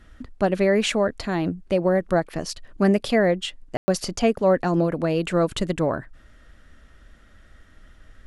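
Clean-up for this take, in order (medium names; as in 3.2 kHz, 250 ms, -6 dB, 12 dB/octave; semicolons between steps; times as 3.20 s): room tone fill 3.77–3.88 s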